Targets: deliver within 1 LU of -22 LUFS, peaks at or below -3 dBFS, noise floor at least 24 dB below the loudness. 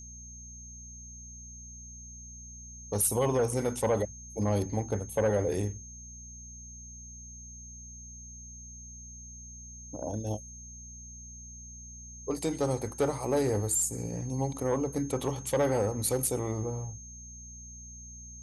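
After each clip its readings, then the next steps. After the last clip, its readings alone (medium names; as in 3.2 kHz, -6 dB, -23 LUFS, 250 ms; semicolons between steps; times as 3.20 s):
hum 60 Hz; highest harmonic 240 Hz; hum level -46 dBFS; steady tone 6.4 kHz; tone level -46 dBFS; loudness -30.5 LUFS; peak level -15.5 dBFS; loudness target -22.0 LUFS
-> de-hum 60 Hz, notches 4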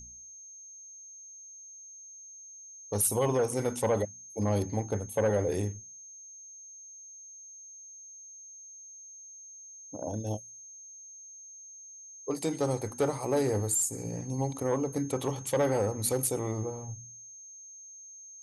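hum not found; steady tone 6.4 kHz; tone level -46 dBFS
-> band-stop 6.4 kHz, Q 30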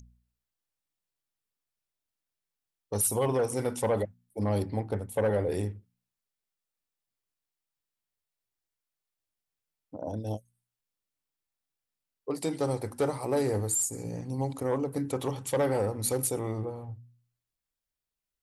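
steady tone not found; loudness -30.5 LUFS; peak level -15.5 dBFS; loudness target -22.0 LUFS
-> trim +8.5 dB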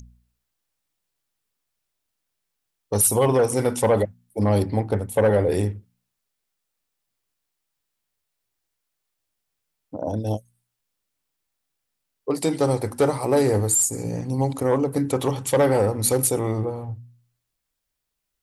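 loudness -22.0 LUFS; peak level -7.0 dBFS; noise floor -80 dBFS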